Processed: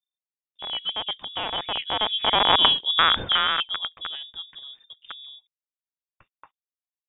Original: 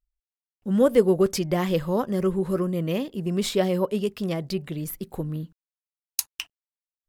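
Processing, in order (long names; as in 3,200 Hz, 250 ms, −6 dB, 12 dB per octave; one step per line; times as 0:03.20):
loose part that buzzes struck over −27 dBFS, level −9 dBFS
source passing by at 0:02.73, 36 m/s, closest 7.7 metres
voice inversion scrambler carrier 3,600 Hz
level +7.5 dB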